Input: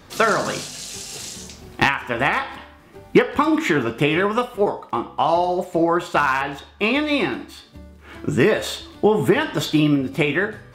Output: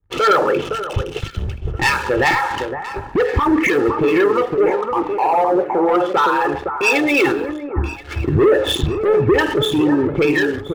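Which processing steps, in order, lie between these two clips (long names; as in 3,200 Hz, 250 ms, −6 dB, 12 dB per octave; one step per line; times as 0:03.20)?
spectral envelope exaggerated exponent 2
elliptic low-pass filter 3,100 Hz, stop band 40 dB
comb filter 2.3 ms, depth 62%
leveller curve on the samples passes 3
downward compressor 20 to 1, threshold −19 dBFS, peak gain reduction 15.5 dB
on a send: delay that swaps between a low-pass and a high-pass 514 ms, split 1,600 Hz, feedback 54%, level −6 dB
on the sum: boost into a limiter +15.5 dB
multiband upward and downward expander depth 100%
level −8 dB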